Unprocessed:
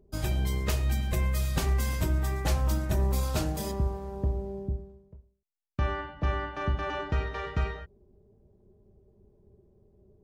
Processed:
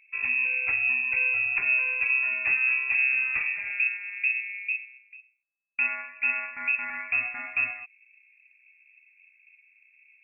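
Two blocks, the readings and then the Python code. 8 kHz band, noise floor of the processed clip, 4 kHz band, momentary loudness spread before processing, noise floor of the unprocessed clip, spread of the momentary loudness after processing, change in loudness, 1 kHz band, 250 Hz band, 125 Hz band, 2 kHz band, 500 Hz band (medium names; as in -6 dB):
under -40 dB, -63 dBFS, under -15 dB, 7 LU, -64 dBFS, 7 LU, +6.0 dB, -6.0 dB, under -20 dB, under -30 dB, +17.5 dB, under -15 dB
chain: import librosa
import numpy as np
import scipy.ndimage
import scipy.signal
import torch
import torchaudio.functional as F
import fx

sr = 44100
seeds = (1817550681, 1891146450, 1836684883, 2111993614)

y = fx.high_shelf(x, sr, hz=2000.0, db=-9.5)
y = fx.freq_invert(y, sr, carrier_hz=2600)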